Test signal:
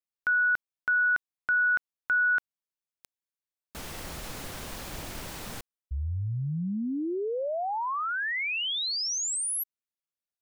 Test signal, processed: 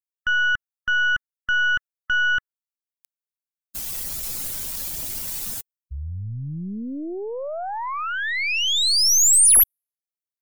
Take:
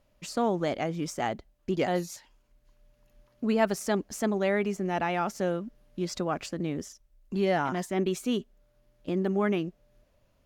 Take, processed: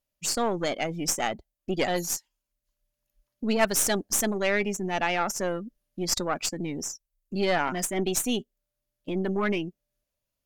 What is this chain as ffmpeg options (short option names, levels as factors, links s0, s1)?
-af "crystalizer=i=5:c=0,afftdn=nr=21:nf=-35,aeval=exprs='0.376*(cos(1*acos(clip(val(0)/0.376,-1,1)))-cos(1*PI/2))+0.0376*(cos(6*acos(clip(val(0)/0.376,-1,1)))-cos(6*PI/2))':c=same"